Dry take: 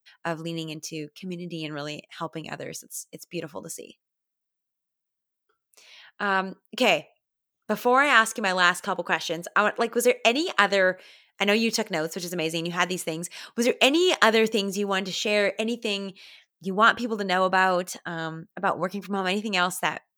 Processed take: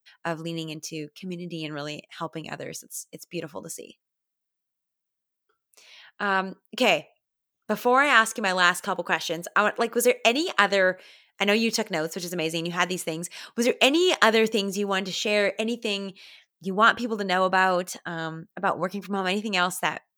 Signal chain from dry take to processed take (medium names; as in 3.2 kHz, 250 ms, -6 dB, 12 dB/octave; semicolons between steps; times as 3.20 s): 8.48–10.50 s: treble shelf 11 kHz +6 dB